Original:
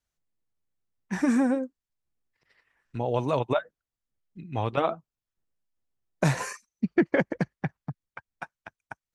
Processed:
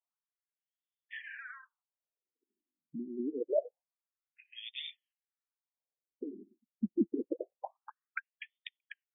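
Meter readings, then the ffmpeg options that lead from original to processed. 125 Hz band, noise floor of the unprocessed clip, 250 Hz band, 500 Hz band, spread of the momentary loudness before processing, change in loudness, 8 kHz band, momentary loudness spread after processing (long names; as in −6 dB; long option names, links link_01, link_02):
below −20 dB, below −85 dBFS, −11.0 dB, −9.5 dB, 19 LU, −11.5 dB, below −35 dB, 18 LU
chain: -af "agate=range=-12dB:threshold=-53dB:ratio=16:detection=peak,highshelf=frequency=4500:width_type=q:width=1.5:gain=8.5,areverse,acompressor=threshold=-33dB:ratio=8,areverse,aexciter=amount=4.5:drive=8.5:freq=3500,afftfilt=real='re*between(b*sr/1024,240*pow(2600/240,0.5+0.5*sin(2*PI*0.26*pts/sr))/1.41,240*pow(2600/240,0.5+0.5*sin(2*PI*0.26*pts/sr))*1.41)':imag='im*between(b*sr/1024,240*pow(2600/240,0.5+0.5*sin(2*PI*0.26*pts/sr))/1.41,240*pow(2600/240,0.5+0.5*sin(2*PI*0.26*pts/sr))*1.41)':win_size=1024:overlap=0.75,volume=7.5dB"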